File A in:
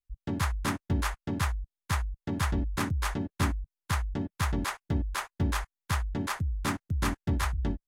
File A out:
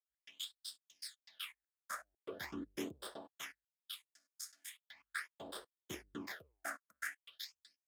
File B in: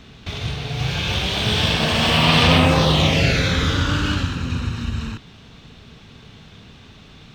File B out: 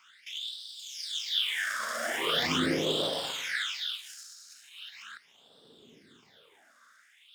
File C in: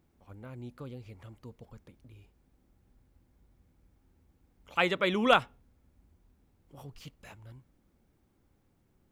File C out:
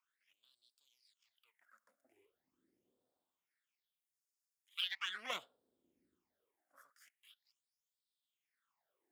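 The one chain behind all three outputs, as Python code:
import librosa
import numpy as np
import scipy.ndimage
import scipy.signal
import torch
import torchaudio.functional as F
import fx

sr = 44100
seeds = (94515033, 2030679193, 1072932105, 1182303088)

y = fx.lower_of_two(x, sr, delay_ms=0.58)
y = fx.phaser_stages(y, sr, stages=8, low_hz=110.0, high_hz=2100.0, hz=0.4, feedback_pct=35)
y = fx.filter_lfo_highpass(y, sr, shape='sine', hz=0.29, low_hz=330.0, high_hz=5100.0, q=2.4)
y = F.gain(torch.from_numpy(y), -8.5).numpy()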